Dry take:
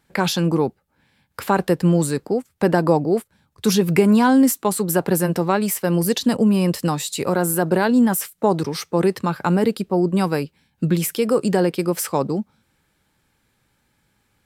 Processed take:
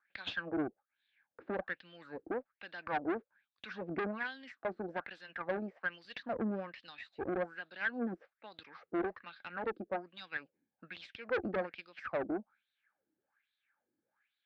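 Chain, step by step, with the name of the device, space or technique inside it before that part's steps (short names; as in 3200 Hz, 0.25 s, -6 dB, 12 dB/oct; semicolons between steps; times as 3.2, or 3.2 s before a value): wah-wah guitar rig (wah 1.2 Hz 330–3800 Hz, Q 5.7; tube stage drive 28 dB, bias 0.7; speaker cabinet 79–3800 Hz, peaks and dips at 150 Hz -7 dB, 410 Hz -8 dB, 970 Hz -6 dB, 1600 Hz +6 dB, 3100 Hz -5 dB); gain +1 dB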